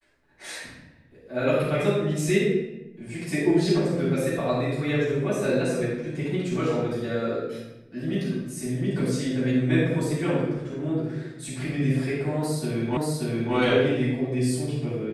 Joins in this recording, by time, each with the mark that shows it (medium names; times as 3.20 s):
12.97 s: repeat of the last 0.58 s